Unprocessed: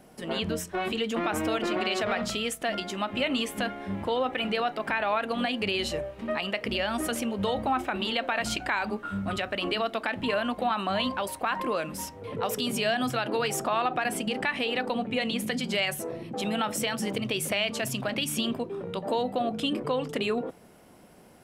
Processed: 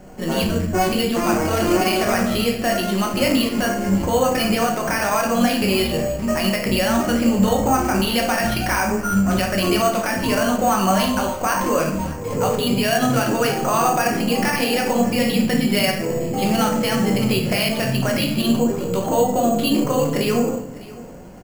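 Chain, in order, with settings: bass shelf 110 Hz +8.5 dB; in parallel at +1 dB: peak limiter -22.5 dBFS, peak gain reduction 9.5 dB; on the sum: distance through air 83 m; on a send: delay 603 ms -19.5 dB; on the sum: simulated room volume 150 m³, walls mixed, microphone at 1 m; careless resampling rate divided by 6×, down filtered, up hold; trim +1 dB

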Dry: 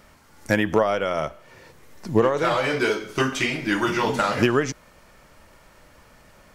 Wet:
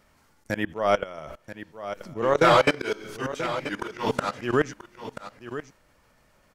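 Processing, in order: level held to a coarse grid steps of 23 dB; slow attack 243 ms; on a send: delay 983 ms -12 dB; on the sum: trim +7 dB

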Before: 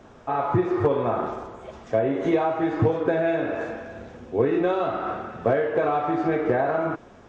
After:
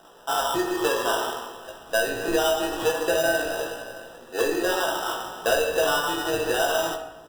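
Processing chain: high-pass 510 Hz 12 dB/octave; sample-rate reducer 2.2 kHz, jitter 0%; doubling 17 ms -5 dB; simulated room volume 490 m³, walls mixed, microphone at 0.71 m

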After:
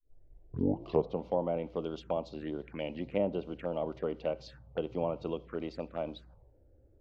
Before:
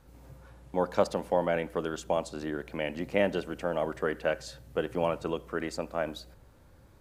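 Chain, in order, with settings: tape start-up on the opening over 1.25 s; level-controlled noise filter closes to 550 Hz, open at -27 dBFS; touch-sensitive phaser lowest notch 150 Hz, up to 1.7 kHz, full sweep at -30 dBFS; low-pass that closes with the level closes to 1.4 kHz, closed at -24 dBFS; trim -2.5 dB

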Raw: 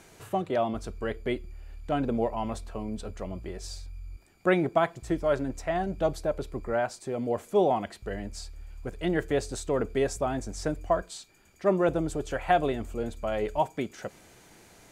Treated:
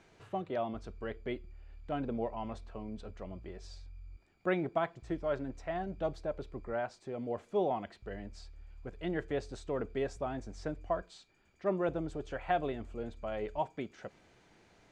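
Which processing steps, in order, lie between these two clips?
low-pass 4.4 kHz 12 dB/octave; trim -8 dB

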